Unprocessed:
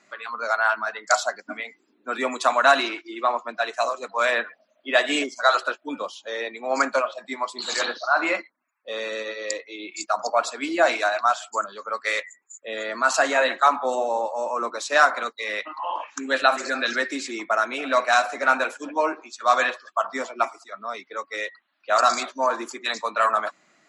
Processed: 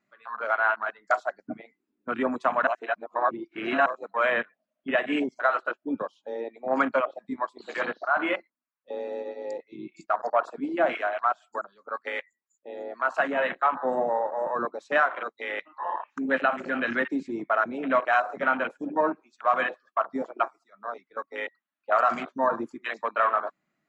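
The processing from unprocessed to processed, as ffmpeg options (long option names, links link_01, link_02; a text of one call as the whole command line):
ffmpeg -i in.wav -filter_complex "[0:a]asettb=1/sr,asplit=3[link_01][link_02][link_03];[link_01]atrim=end=10.604[link_04];[link_02]atrim=start=10.6:end=13.77,asetpts=PTS-STARTPTS,afade=type=in:duration=0.004:curve=qsin,afade=type=out:start_time=3.166:duration=0.004:curve=qsin,acrossover=split=650[link_05][link_06];[link_05]aeval=exprs='val(0)*(1-0.5/2+0.5/2*cos(2*PI*4*n/s))':channel_layout=same[link_07];[link_06]aeval=exprs='val(0)*(1-0.5/2-0.5/2*cos(2*PI*4*n/s))':channel_layout=same[link_08];[link_07][link_08]amix=inputs=2:normalize=0[link_09];[link_03]atrim=start=13.766[link_10];[link_04][link_09]acrossfade=duration=0.004:curve1=hsin:curve2=qsin[link_11];[link_11][link_10]acrossfade=duration=0.004:curve1=qsin:curve2=hsin,asplit=3[link_12][link_13][link_14];[link_12]atrim=end=2.672[link_15];[link_13]atrim=start=2.668:end=3.862,asetpts=PTS-STARTPTS,areverse[link_16];[link_14]atrim=start=3.858[link_17];[link_15][link_16]acrossfade=duration=0.004:curve1=hsin:curve2=hsin[link_18];[link_18][link_17]acrossfade=duration=0.004:curve1=hsin:curve2=hsin,afwtdn=0.0447,bass=frequency=250:gain=13,treble=frequency=4000:gain=-9,alimiter=limit=-9dB:level=0:latency=1:release=334,volume=-2dB" out.wav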